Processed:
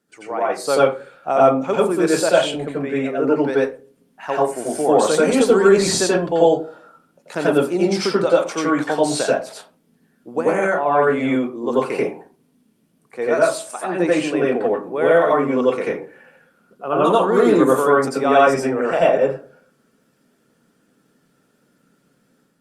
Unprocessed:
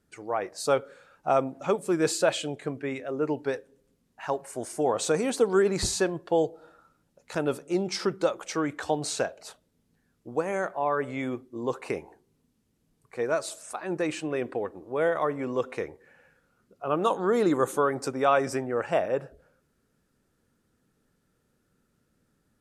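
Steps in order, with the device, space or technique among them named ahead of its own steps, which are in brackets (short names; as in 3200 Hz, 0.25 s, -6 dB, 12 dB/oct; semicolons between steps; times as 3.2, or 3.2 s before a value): far-field microphone of a smart speaker (reverb RT60 0.30 s, pre-delay 83 ms, DRR -5.5 dB; HPF 160 Hz 24 dB/oct; AGC gain up to 4 dB; gain +1 dB; Opus 48 kbps 48000 Hz)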